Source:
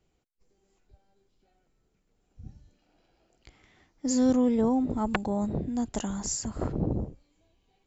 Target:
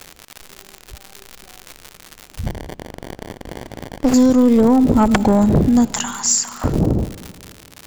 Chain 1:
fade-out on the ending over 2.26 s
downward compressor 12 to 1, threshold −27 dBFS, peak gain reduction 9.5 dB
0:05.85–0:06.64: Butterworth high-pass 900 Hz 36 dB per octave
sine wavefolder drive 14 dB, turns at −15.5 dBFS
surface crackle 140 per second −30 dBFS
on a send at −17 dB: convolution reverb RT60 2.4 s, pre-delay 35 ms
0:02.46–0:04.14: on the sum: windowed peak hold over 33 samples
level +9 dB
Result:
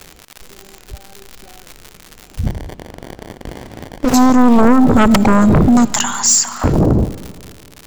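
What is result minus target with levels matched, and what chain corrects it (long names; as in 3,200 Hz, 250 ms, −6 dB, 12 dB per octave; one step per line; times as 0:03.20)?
sine wavefolder: distortion +14 dB
fade-out on the ending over 2.26 s
downward compressor 12 to 1, threshold −27 dBFS, peak gain reduction 9.5 dB
0:05.85–0:06.64: Butterworth high-pass 900 Hz 36 dB per octave
sine wavefolder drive 7 dB, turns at −15.5 dBFS
surface crackle 140 per second −30 dBFS
on a send at −17 dB: convolution reverb RT60 2.4 s, pre-delay 35 ms
0:02.46–0:04.14: on the sum: windowed peak hold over 33 samples
level +9 dB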